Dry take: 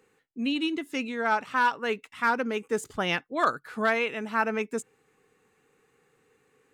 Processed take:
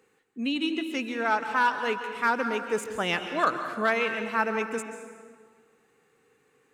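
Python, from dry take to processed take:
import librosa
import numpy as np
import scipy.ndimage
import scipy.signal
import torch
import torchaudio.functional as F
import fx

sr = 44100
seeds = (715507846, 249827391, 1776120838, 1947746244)

y = fx.low_shelf(x, sr, hz=98.0, db=-7.0)
y = fx.rev_plate(y, sr, seeds[0], rt60_s=1.7, hf_ratio=0.7, predelay_ms=120, drr_db=7.5)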